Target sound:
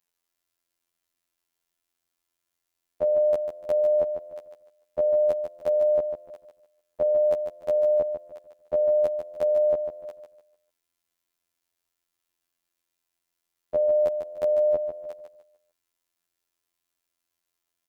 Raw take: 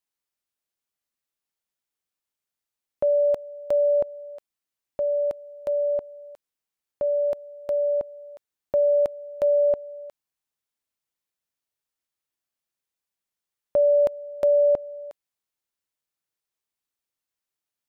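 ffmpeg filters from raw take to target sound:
-af "alimiter=limit=0.0944:level=0:latency=1,afftfilt=real='hypot(re,im)*cos(PI*b)':imag='0':win_size=2048:overlap=0.75,aecho=1:1:148|296|444|592:0.422|0.127|0.038|0.0114,volume=2.51"

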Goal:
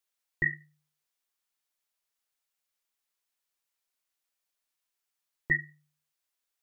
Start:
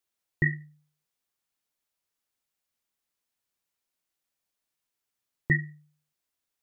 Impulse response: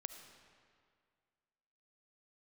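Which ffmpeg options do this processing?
-af "equalizer=f=120:w=0.37:g=-12.5"

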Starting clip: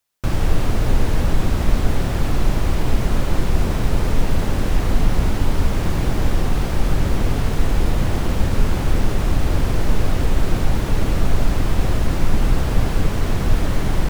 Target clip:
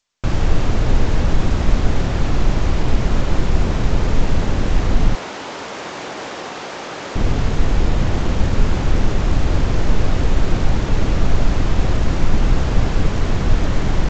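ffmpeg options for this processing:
-filter_complex "[0:a]asettb=1/sr,asplit=3[s0][s1][s2];[s0]atrim=end=5.154[s3];[s1]atrim=start=5.15:end=7.16,asetpts=PTS-STARTPTS,afade=t=in:d=0.004:c=qsin,afade=t=out:st=2.006:d=0.004:c=qsin,highpass=480[s4];[s2]atrim=start=7.156[s5];[s3][s4]acrossfade=d=0.004:c1=hsin:c2=qsin[s6];[s6][s5]acrossfade=d=0.004:c1=qsin:c2=hsin,volume=1.19" -ar 16000 -c:a g722

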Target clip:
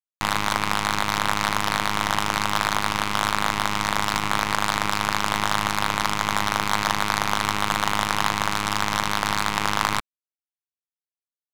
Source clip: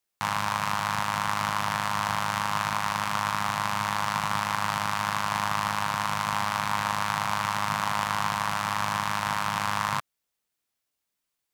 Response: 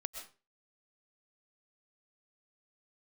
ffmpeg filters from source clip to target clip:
-af "acrusher=bits=4:dc=4:mix=0:aa=0.000001,adynamicsmooth=sensitivity=6:basefreq=2700,volume=1.88"

